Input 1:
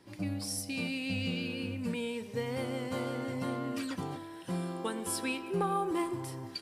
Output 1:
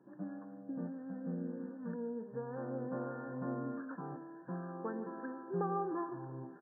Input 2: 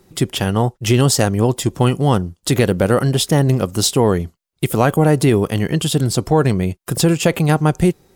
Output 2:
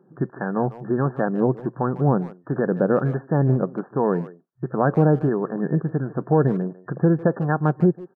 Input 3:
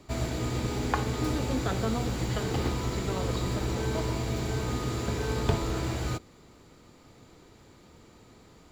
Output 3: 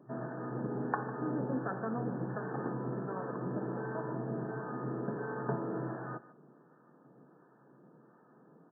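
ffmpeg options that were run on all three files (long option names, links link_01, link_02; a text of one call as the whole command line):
ffmpeg -i in.wav -filter_complex "[0:a]acrossover=split=730[link_01][link_02];[link_01]aeval=exprs='val(0)*(1-0.5/2+0.5/2*cos(2*PI*1.4*n/s))':channel_layout=same[link_03];[link_02]aeval=exprs='val(0)*(1-0.5/2-0.5/2*cos(2*PI*1.4*n/s))':channel_layout=same[link_04];[link_03][link_04]amix=inputs=2:normalize=0,afftfilt=real='re*between(b*sr/4096,120,1800)':imag='im*between(b*sr/4096,120,1800)':win_size=4096:overlap=0.75,asplit=2[link_05][link_06];[link_06]adelay=150,highpass=300,lowpass=3400,asoftclip=type=hard:threshold=-12dB,volume=-16dB[link_07];[link_05][link_07]amix=inputs=2:normalize=0,volume=-2.5dB" out.wav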